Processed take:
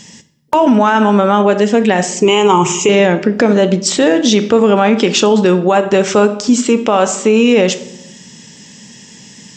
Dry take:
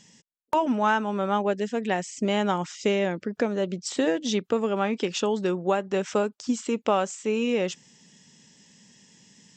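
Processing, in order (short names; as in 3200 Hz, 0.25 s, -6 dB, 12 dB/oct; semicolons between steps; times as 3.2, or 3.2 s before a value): 2.21–2.89 ripple EQ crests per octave 0.71, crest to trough 17 dB; reverb RT60 0.80 s, pre-delay 9 ms, DRR 10.5 dB; maximiser +18.5 dB; gain -1 dB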